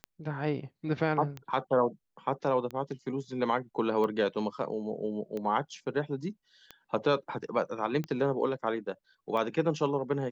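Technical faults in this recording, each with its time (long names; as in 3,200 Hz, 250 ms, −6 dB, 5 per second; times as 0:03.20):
scratch tick 45 rpm −24 dBFS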